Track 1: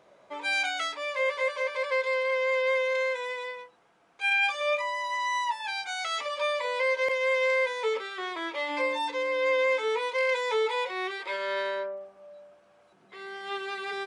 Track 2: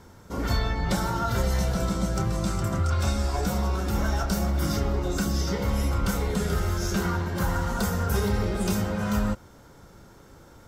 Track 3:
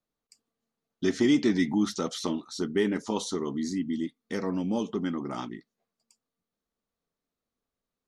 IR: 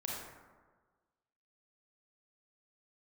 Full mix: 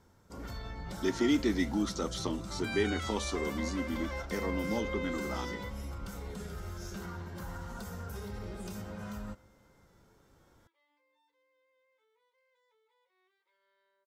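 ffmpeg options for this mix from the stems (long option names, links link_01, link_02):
-filter_complex "[0:a]equalizer=frequency=640:width_type=o:width=0.21:gain=-12,bandreject=frequency=2500:width=11,alimiter=level_in=1dB:limit=-24dB:level=0:latency=1:release=64,volume=-1dB,adelay=2200,volume=-7.5dB[link_01];[1:a]alimiter=limit=-18.5dB:level=0:latency=1:release=47,volume=-14.5dB,asplit=2[link_02][link_03];[link_03]volume=-21.5dB[link_04];[2:a]highpass=240,volume=-3.5dB,asplit=2[link_05][link_06];[link_06]apad=whole_len=717105[link_07];[link_01][link_07]sidechaingate=range=-35dB:threshold=-58dB:ratio=16:detection=peak[link_08];[3:a]atrim=start_sample=2205[link_09];[link_04][link_09]afir=irnorm=-1:irlink=0[link_10];[link_08][link_02][link_05][link_10]amix=inputs=4:normalize=0"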